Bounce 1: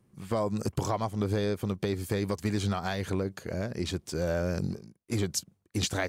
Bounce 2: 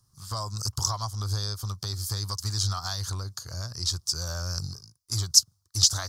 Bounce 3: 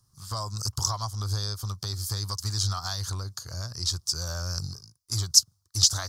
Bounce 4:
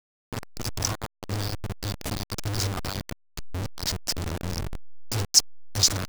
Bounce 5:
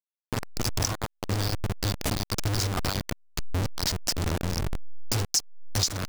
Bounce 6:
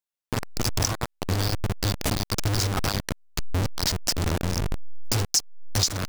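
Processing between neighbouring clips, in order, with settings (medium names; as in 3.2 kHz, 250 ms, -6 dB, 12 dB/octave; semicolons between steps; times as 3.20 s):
FFT filter 110 Hz 0 dB, 200 Hz -19 dB, 480 Hz -20 dB, 1.2 kHz +1 dB, 2.3 kHz -19 dB, 5.1 kHz +15 dB, 8.1 kHz +6 dB; trim +3 dB
no audible change
send-on-delta sampling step -23 dBFS
compression 6:1, threshold -29 dBFS, peak gain reduction 16.5 dB; trim +5.5 dB
warped record 33 1/3 rpm, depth 100 cents; trim +2.5 dB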